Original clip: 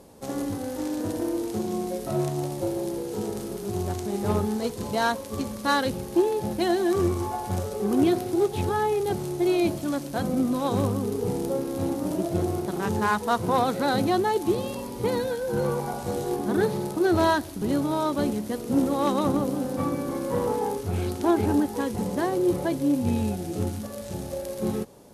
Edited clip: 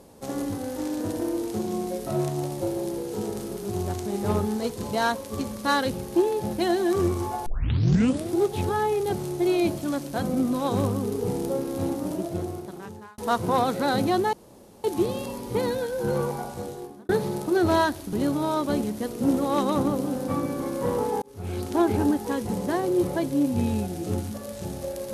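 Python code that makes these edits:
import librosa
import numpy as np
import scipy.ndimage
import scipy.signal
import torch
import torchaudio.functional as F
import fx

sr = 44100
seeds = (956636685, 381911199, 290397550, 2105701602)

y = fx.edit(x, sr, fx.tape_start(start_s=7.46, length_s=0.87),
    fx.fade_out_span(start_s=11.86, length_s=1.32),
    fx.insert_room_tone(at_s=14.33, length_s=0.51),
    fx.fade_out_span(start_s=15.74, length_s=0.84),
    fx.fade_in_span(start_s=20.71, length_s=0.46), tone=tone)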